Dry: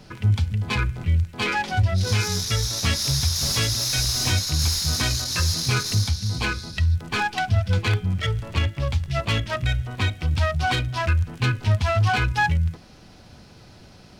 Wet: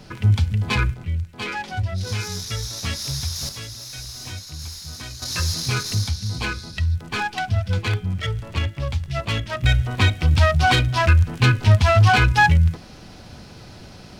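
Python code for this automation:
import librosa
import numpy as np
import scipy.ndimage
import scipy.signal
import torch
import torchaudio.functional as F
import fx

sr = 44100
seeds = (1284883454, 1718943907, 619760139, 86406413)

y = fx.gain(x, sr, db=fx.steps((0.0, 3.0), (0.94, -4.5), (3.49, -12.0), (5.22, -1.0), (9.64, 6.0)))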